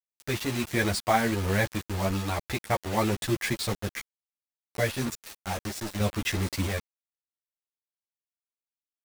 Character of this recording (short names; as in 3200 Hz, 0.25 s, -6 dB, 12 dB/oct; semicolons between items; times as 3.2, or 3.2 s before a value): random-step tremolo 1.5 Hz, depth 95%; a quantiser's noise floor 6-bit, dither none; a shimmering, thickened sound